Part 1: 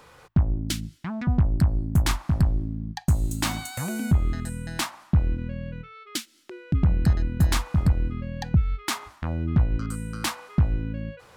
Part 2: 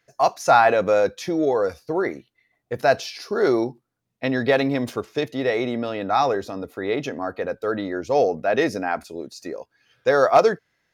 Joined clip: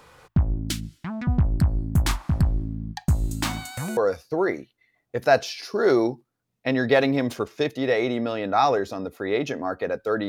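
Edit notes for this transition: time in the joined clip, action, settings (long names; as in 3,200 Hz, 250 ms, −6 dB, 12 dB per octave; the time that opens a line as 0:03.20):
part 1
0:03.01–0:03.97: linearly interpolated sample-rate reduction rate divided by 2×
0:03.97: continue with part 2 from 0:01.54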